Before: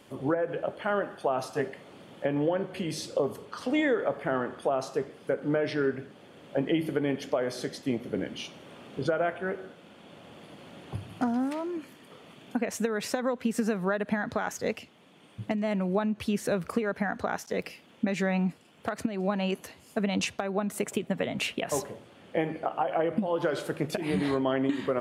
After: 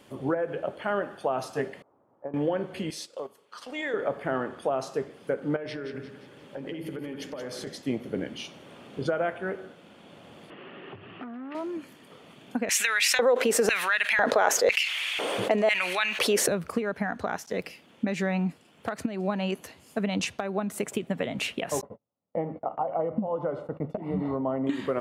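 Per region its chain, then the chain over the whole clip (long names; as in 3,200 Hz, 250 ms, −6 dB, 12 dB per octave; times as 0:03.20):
0:01.82–0:02.34: transistor ladder low-pass 1,200 Hz, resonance 45% + parametric band 180 Hz −9.5 dB 0.42 octaves + expander for the loud parts, over −47 dBFS
0:02.90–0:03.94: high-pass filter 980 Hz 6 dB per octave + transient designer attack −5 dB, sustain −11 dB
0:05.56–0:07.67: downward compressor 12 to 1, threshold −32 dBFS + Butterworth band-reject 690 Hz, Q 7.3 + echo with a time of its own for lows and highs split 1,400 Hz, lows 95 ms, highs 175 ms, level −8.5 dB
0:10.50–0:11.55: downward compressor 2 to 1, threshold −42 dBFS + loudspeaker in its box 150–3,100 Hz, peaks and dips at 390 Hz +10 dB, 1,200 Hz +8 dB, 1,800 Hz +9 dB, 2,800 Hz +9 dB + saturating transformer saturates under 790 Hz
0:12.69–0:16.48: auto-filter high-pass square 1 Hz 490–2,300 Hz + envelope flattener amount 70%
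0:21.81–0:24.67: Savitzky-Golay smoothing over 65 samples + parametric band 360 Hz −14 dB 0.21 octaves + noise gate −43 dBFS, range −34 dB
whole clip: no processing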